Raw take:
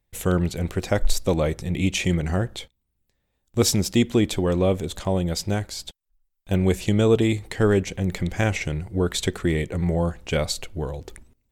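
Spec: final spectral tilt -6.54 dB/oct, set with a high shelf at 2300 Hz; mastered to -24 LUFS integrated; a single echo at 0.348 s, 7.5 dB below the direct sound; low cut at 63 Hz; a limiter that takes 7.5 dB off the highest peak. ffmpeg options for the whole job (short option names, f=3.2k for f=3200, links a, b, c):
-af "highpass=63,highshelf=f=2.3k:g=-7,alimiter=limit=-14dB:level=0:latency=1,aecho=1:1:348:0.422,volume=2dB"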